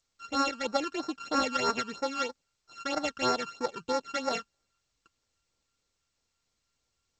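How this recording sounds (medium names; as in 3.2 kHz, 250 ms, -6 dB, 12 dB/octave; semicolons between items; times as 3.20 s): a buzz of ramps at a fixed pitch in blocks of 32 samples; tremolo saw up 0.51 Hz, depth 35%; phasing stages 12, 3.1 Hz, lowest notch 630–3100 Hz; G.722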